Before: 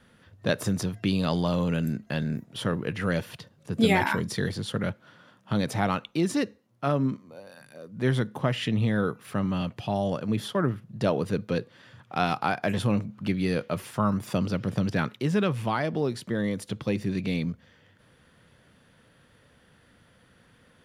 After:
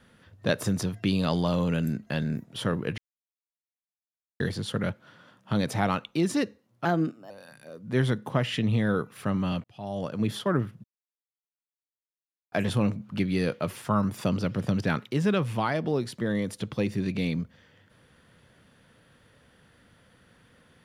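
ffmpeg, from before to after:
-filter_complex "[0:a]asplit=8[s0][s1][s2][s3][s4][s5][s6][s7];[s0]atrim=end=2.98,asetpts=PTS-STARTPTS,afade=t=out:st=2.976:d=0.004:c=hsin[s8];[s1]atrim=start=2.98:end=4.4,asetpts=PTS-STARTPTS,volume=0[s9];[s2]atrim=start=4.4:end=6.854,asetpts=PTS-STARTPTS,afade=t=in:d=0.004:c=hsin[s10];[s3]atrim=start=6.85:end=7.39,asetpts=PTS-STARTPTS,asetrate=52920,aresample=44100[s11];[s4]atrim=start=7.386:end=9.73,asetpts=PTS-STARTPTS,afade=t=out:st=2.34:d=0.004:c=hsin[s12];[s5]atrim=start=9.73:end=10.93,asetpts=PTS-STARTPTS,afade=t=in:d=0.59,afade=t=out:st=1.196:d=0.004:c=hsin[s13];[s6]atrim=start=10.93:end=12.61,asetpts=PTS-STARTPTS,volume=0[s14];[s7]atrim=start=12.61,asetpts=PTS-STARTPTS,afade=t=in:d=0.004:c=hsin[s15];[s8][s9][s10]concat=n=3:v=0:a=1[s16];[s16][s11]acrossfade=d=0.004:c1=hsin:c2=hsin[s17];[s12][s13][s14][s15]concat=n=4:v=0:a=1[s18];[s17][s18]acrossfade=d=0.004:c1=hsin:c2=hsin"

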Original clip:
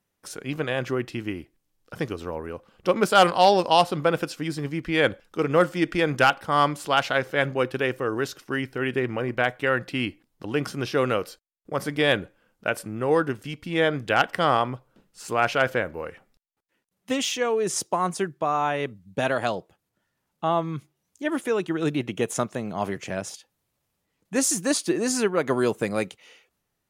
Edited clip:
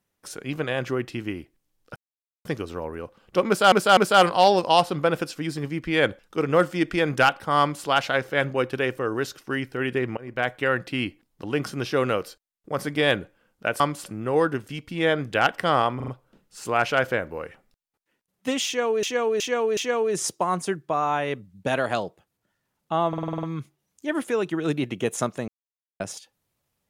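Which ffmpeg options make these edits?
-filter_complex "[0:a]asplit=22[s0][s1][s2][s3][s4][s5][s6][s7][s8][s9][s10][s11][s12][s13][s14][s15][s16][s17][s18][s19][s20][s21];[s0]atrim=end=1.96,asetpts=PTS-STARTPTS,afade=t=out:st=1.956:d=0.004:c=hsin,apad=pad_dur=0.49[s22];[s1]atrim=start=1.96:end=3.232,asetpts=PTS-STARTPTS,afade=t=in:d=0.004:c=hsin[s23];[s2]atrim=start=2.978:end=3.232[s24];[s3]atrim=start=2.978:end=9.18,asetpts=PTS-STARTPTS,afade=t=out:st=6.198:d=0.004:c=hsin:silence=0.0707946[s25];[s4]atrim=start=9.18:end=12.812,asetpts=PTS-STARTPTS,afade=t=in:d=0.33:silence=0.0707946[s26];[s5]atrim=start=6.608:end=6.872[s27];[s6]atrim=start=12.808:end=14.752[s28];[s7]atrim=start=14.708:end=14.752[s29];[s8]atrim=start=14.708:end=14.752[s30];[s9]atrim=start=14.708:end=17.662[s31];[s10]atrim=start=17.288:end=17.662[s32];[s11]atrim=start=17.288:end=17.662[s33];[s12]atrim=start=17.288:end=20.652[s34];[s13]atrim=start=20.598:end=20.652[s35];[s14]atrim=start=20.598:end=20.652[s36];[s15]atrim=start=20.598:end=20.652[s37];[s16]atrim=start=20.598:end=20.652[s38];[s17]atrim=start=20.598:end=20.652[s39];[s18]atrim=start=20.598:end=20.652[s40];[s19]atrim=start=20.598:end=22.65,asetpts=PTS-STARTPTS,afade=t=out:st=2.048:d=0.004:c=hsin[s41];[s20]atrim=start=22.65:end=23.17,asetpts=PTS-STARTPTS,volume=0[s42];[s21]atrim=start=23.17,asetpts=PTS-STARTPTS,afade=t=in:d=0.004:c=hsin[s43];[s22][s23]concat=n=2:v=0:a=1[s44];[s44][s24]acrossfade=d=0.004:c1=hsin:c2=hsin[s45];[s25][s26]concat=n=2:v=0:a=1[s46];[s45][s46]acrossfade=d=0.004:c1=hsin:c2=hsin[s47];[s47][s27]acrossfade=d=0.004:c1=hsin:c2=hsin[s48];[s48][s28]acrossfade=d=0.004:c1=hsin:c2=hsin[s49];[s49][s29]acrossfade=d=0.004:c1=hsin:c2=hsin[s50];[s50][s30]acrossfade=d=0.004:c1=hsin:c2=hsin[s51];[s51][s31]acrossfade=d=0.004:c1=hsin:c2=hsin[s52];[s52][s32]acrossfade=d=0.004:c1=hsin:c2=hsin[s53];[s53][s33]acrossfade=d=0.004:c1=hsin:c2=hsin[s54];[s54][s34]acrossfade=d=0.004:c1=hsin:c2=hsin[s55];[s55][s35]acrossfade=d=0.004:c1=hsin:c2=hsin[s56];[s56][s36]acrossfade=d=0.004:c1=hsin:c2=hsin[s57];[s57][s37]acrossfade=d=0.004:c1=hsin:c2=hsin[s58];[s58][s38]acrossfade=d=0.004:c1=hsin:c2=hsin[s59];[s59][s39]acrossfade=d=0.004:c1=hsin:c2=hsin[s60];[s60][s40]acrossfade=d=0.004:c1=hsin:c2=hsin[s61];[s41][s42][s43]concat=n=3:v=0:a=1[s62];[s61][s62]acrossfade=d=0.004:c1=hsin:c2=hsin"

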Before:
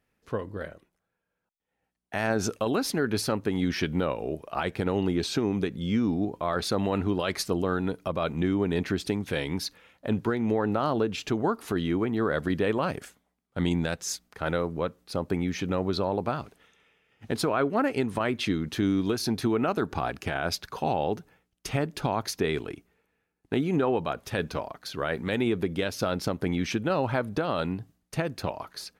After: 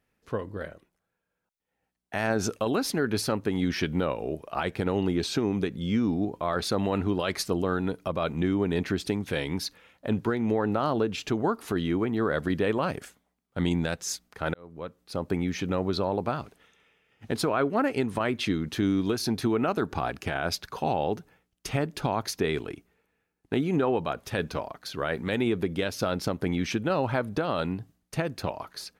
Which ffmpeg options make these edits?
-filter_complex "[0:a]asplit=2[s0][s1];[s0]atrim=end=14.54,asetpts=PTS-STARTPTS,afade=t=out:st=14.536:d=0.004:c=hsin[s2];[s1]atrim=start=14.54,asetpts=PTS-STARTPTS,afade=t=in:d=0.76[s3];[s2][s3]concat=n=2:v=0:a=1"

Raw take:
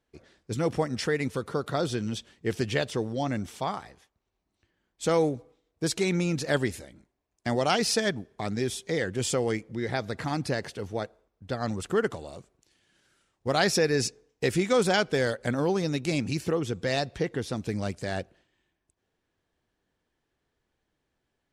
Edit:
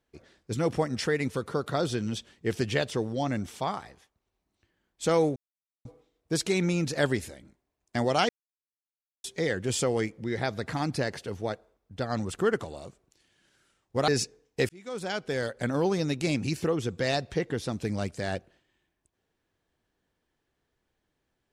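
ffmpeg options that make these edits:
-filter_complex "[0:a]asplit=6[s0][s1][s2][s3][s4][s5];[s0]atrim=end=5.36,asetpts=PTS-STARTPTS,afade=t=out:st=5.356:d=0.004:c=hsin,apad=pad_dur=0.49[s6];[s1]atrim=start=5.36:end=7.8,asetpts=PTS-STARTPTS,afade=t=in:d=0.004:c=hsin,afade=t=out:st=2.436:d=0.004:c=hsin[s7];[s2]atrim=start=7.8:end=8.75,asetpts=PTS-STARTPTS,volume=0[s8];[s3]atrim=start=8.75:end=13.592,asetpts=PTS-STARTPTS,afade=t=in:d=0.004:c=hsin[s9];[s4]atrim=start=13.918:end=14.53,asetpts=PTS-STARTPTS,afade=t=out:st=0.608:d=0.004:c=hsin[s10];[s5]atrim=start=14.53,asetpts=PTS-STARTPTS,afade=t=in:d=1.13[s11];[s6][s7][s8][s9]concat=n=4:v=0:a=1[s12];[s10][s11]concat=n=2:v=0:a=1[s13];[s12][s13]acrossfade=d=0.004:c1=hsin:c2=hsin"

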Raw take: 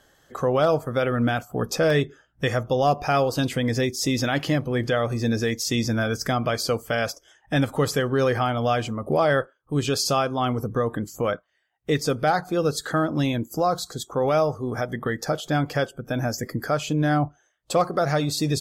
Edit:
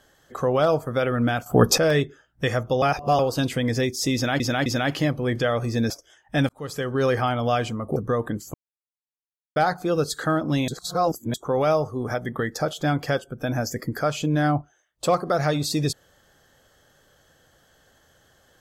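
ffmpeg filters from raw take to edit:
-filter_complex "[0:a]asplit=14[s0][s1][s2][s3][s4][s5][s6][s7][s8][s9][s10][s11][s12][s13];[s0]atrim=end=1.462[s14];[s1]atrim=start=1.458:end=1.782,asetpts=PTS-STARTPTS,volume=3.16[s15];[s2]atrim=start=1.778:end=2.822[s16];[s3]atrim=start=2.818:end=3.192,asetpts=PTS-STARTPTS,areverse[s17];[s4]atrim=start=3.188:end=4.402[s18];[s5]atrim=start=4.138:end=4.402[s19];[s6]atrim=start=4.138:end=5.382[s20];[s7]atrim=start=7.078:end=7.67,asetpts=PTS-STARTPTS,afade=t=out:st=0.588:d=0.004:c=hsin[s21];[s8]atrim=start=7.67:end=9.142,asetpts=PTS-STARTPTS,afade=t=in:d=0.56[s22];[s9]atrim=start=10.628:end=11.21,asetpts=PTS-STARTPTS,afade=t=out:st=0.578:d=0.004:c=hsin[s23];[s10]atrim=start=11.21:end=12.23,asetpts=PTS-STARTPTS,volume=0[s24];[s11]atrim=start=12.23:end=13.352,asetpts=PTS-STARTPTS,afade=t=in:d=0.004:c=hsin[s25];[s12]atrim=start=13.348:end=14.012,asetpts=PTS-STARTPTS,areverse[s26];[s13]atrim=start=14.008[s27];[s14][s15]acrossfade=d=0.004:c1=hsin:c2=hsin[s28];[s28][s16]acrossfade=d=0.004:c1=hsin:c2=hsin[s29];[s29][s17]acrossfade=d=0.004:c1=hsin:c2=hsin[s30];[s30][s18]acrossfade=d=0.004:c1=hsin:c2=hsin[s31];[s31][s19]acrossfade=d=0.004:c1=hsin:c2=hsin[s32];[s32][s20]acrossfade=d=0.004:c1=hsin:c2=hsin[s33];[s21][s22]concat=n=2:v=0:a=1[s34];[s33][s34]acrossfade=d=0.004:c1=hsin:c2=hsin[s35];[s23][s24][s25]concat=n=3:v=0:a=1[s36];[s35][s36]acrossfade=d=0.004:c1=hsin:c2=hsin[s37];[s37][s26]acrossfade=d=0.004:c1=hsin:c2=hsin[s38];[s38][s27]acrossfade=d=0.004:c1=hsin:c2=hsin"

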